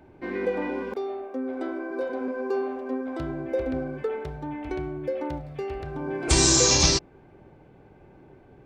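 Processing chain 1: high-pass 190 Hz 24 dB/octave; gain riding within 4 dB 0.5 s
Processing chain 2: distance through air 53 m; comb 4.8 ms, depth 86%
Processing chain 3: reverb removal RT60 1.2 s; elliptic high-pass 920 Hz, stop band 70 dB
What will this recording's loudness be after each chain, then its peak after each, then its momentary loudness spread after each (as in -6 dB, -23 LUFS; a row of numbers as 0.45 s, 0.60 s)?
-27.0 LUFS, -25.5 LUFS, -24.5 LUFS; -10.0 dBFS, -6.5 dBFS, -11.0 dBFS; 9 LU, 14 LU, 22 LU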